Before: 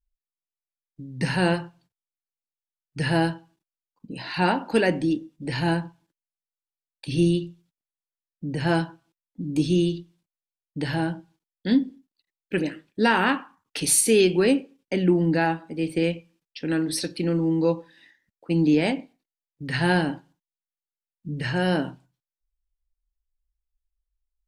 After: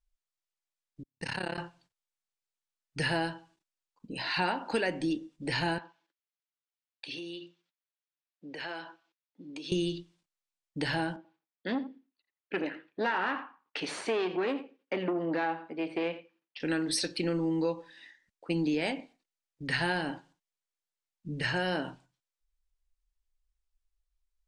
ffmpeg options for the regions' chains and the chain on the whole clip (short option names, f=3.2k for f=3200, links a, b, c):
-filter_complex "[0:a]asettb=1/sr,asplit=3[a][b][c];[a]atrim=end=1.034[d];[b]atrim=start=1.03:end=1.58,asetpts=PTS-STARTPTS,afade=t=in:d=0.004:c=qsin,afade=t=out:st=0.546:d=0.004:c=qsin,agate=range=-47dB:threshold=-30dB:ratio=16:release=100:detection=peak,tremolo=f=34:d=0.947,acompressor=threshold=-31dB:ratio=2.5:attack=3.2:release=140:knee=1:detection=peak[e];[c]atrim=start=1.576[f];[d][e]acrossfade=d=0.004:c1=hsin:c2=qsin[g];[g][f]acrossfade=d=0.004:c1=qsin:c2=hsin,asettb=1/sr,asplit=3[h][i][j];[h]atrim=end=5.784[k];[i]atrim=start=5.78:end=9.72,asetpts=PTS-STARTPTS,afade=t=in:d=0.004:c=qsin,afade=t=out:st=3.936:d=0.004:c=qsin,highpass=440,lowpass=4.1k,equalizer=f=790:t=o:w=1.6:g=-3.5,acompressor=threshold=-36dB:ratio=5:attack=3.2:release=140:knee=1:detection=peak[l];[j]atrim=start=9.716[m];[k][l]acrossfade=d=0.004:c1=hsin:c2=qsin[n];[n][m]acrossfade=d=0.004:c1=qsin:c2=hsin,asettb=1/sr,asplit=3[o][p][q];[o]atrim=end=11.164[r];[p]atrim=start=11.16:end=16.6,asetpts=PTS-STARTPTS,afade=t=in:d=0.004:c=qsin,afade=t=out:st=5.436:d=0.004:c=qsin,aeval=exprs='(tanh(7.94*val(0)+0.35)-tanh(0.35))/7.94':c=same,highpass=230,lowpass=2.5k,aecho=1:1:85:0.158,atrim=end_sample=239904[s];[q]atrim=start=16.596[t];[r][s]acrossfade=d=0.004:c1=hsin:c2=qsin[u];[u][t]acrossfade=d=0.004:c1=qsin:c2=hsin,lowpass=f=9.2k:w=0.5412,lowpass=f=9.2k:w=1.3066,equalizer=f=140:t=o:w=2.9:g=-9,acompressor=threshold=-29dB:ratio=4,volume=2dB"